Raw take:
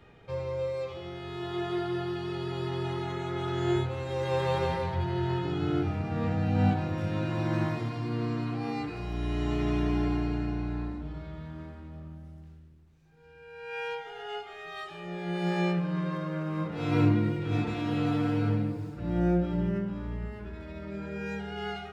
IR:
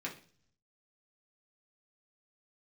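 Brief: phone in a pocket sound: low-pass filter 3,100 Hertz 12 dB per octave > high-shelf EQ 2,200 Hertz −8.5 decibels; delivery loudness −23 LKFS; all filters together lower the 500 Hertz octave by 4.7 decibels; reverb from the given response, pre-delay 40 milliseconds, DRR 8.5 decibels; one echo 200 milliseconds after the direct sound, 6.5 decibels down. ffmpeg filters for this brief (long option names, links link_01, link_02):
-filter_complex "[0:a]equalizer=frequency=500:width_type=o:gain=-6,aecho=1:1:200:0.473,asplit=2[link_01][link_02];[1:a]atrim=start_sample=2205,adelay=40[link_03];[link_02][link_03]afir=irnorm=-1:irlink=0,volume=-10dB[link_04];[link_01][link_04]amix=inputs=2:normalize=0,lowpass=3100,highshelf=frequency=2200:gain=-8.5,volume=7.5dB"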